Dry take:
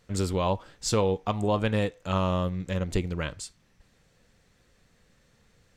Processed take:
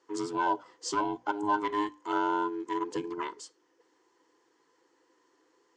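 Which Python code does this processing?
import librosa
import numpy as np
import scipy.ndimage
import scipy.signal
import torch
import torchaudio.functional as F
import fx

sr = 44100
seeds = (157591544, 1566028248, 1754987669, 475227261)

p1 = fx.band_invert(x, sr, width_hz=500)
p2 = fx.low_shelf(p1, sr, hz=270.0, db=-7.5)
p3 = 10.0 ** (-22.0 / 20.0) * (np.abs((p2 / 10.0 ** (-22.0 / 20.0) + 3.0) % 4.0 - 2.0) - 1.0)
p4 = p2 + (p3 * librosa.db_to_amplitude(-11.0))
p5 = fx.cabinet(p4, sr, low_hz=200.0, low_slope=12, high_hz=7000.0, hz=(210.0, 310.0, 480.0, 950.0, 2400.0, 3800.0), db=(-7, 7, -7, 6, -8, -9))
p6 = fx.hum_notches(p5, sr, base_hz=60, count=5)
y = p6 * librosa.db_to_amplitude(-5.0)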